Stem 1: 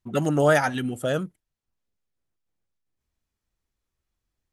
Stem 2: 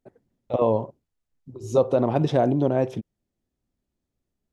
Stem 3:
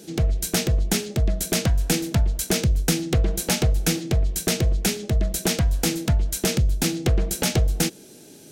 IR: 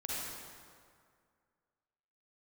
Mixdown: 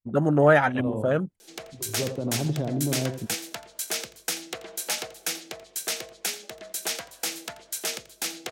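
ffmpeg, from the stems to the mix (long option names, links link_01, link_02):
-filter_complex "[0:a]afwtdn=0.02,volume=1.5dB[link_01];[1:a]acrossover=split=300[link_02][link_03];[link_03]acompressor=threshold=-36dB:ratio=3[link_04];[link_02][link_04]amix=inputs=2:normalize=0,adelay=250,volume=-3dB,asplit=2[link_05][link_06];[link_06]volume=-8dB[link_07];[2:a]highpass=680,adelay=1400,volume=-4dB,asplit=2[link_08][link_09];[link_09]volume=-17.5dB[link_10];[link_07][link_10]amix=inputs=2:normalize=0,aecho=0:1:85:1[link_11];[link_01][link_05][link_08][link_11]amix=inputs=4:normalize=0"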